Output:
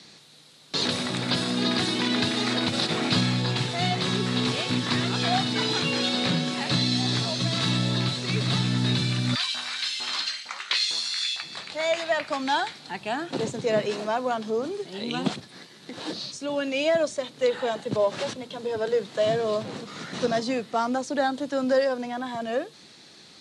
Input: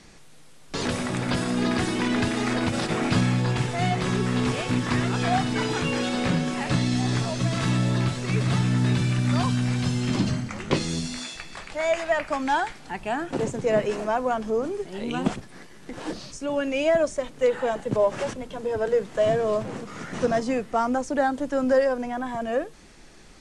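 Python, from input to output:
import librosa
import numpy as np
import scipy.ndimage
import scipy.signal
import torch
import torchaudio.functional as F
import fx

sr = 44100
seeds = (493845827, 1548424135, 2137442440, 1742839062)

y = scipy.signal.sosfilt(scipy.signal.butter(4, 110.0, 'highpass', fs=sr, output='sos'), x)
y = fx.peak_eq(y, sr, hz=4000.0, db=14.5, octaves=0.63)
y = fx.filter_lfo_highpass(y, sr, shape='saw_up', hz=2.2, low_hz=810.0, high_hz=2600.0, q=1.8, at=(9.34, 11.41), fade=0.02)
y = y * 10.0 ** (-2.0 / 20.0)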